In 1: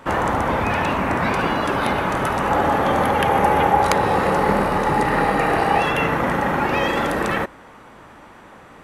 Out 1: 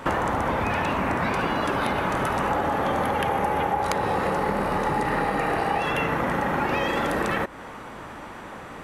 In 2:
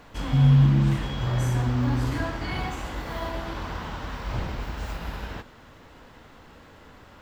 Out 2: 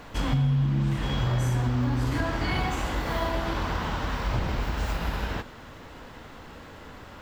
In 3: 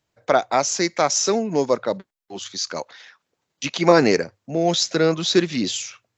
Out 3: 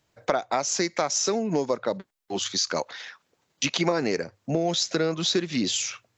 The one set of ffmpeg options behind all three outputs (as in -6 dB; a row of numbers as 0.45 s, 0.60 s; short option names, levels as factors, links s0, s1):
-af "acompressor=threshold=0.0447:ratio=6,volume=1.78"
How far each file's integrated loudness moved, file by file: -5.5 LU, -2.0 LU, -5.5 LU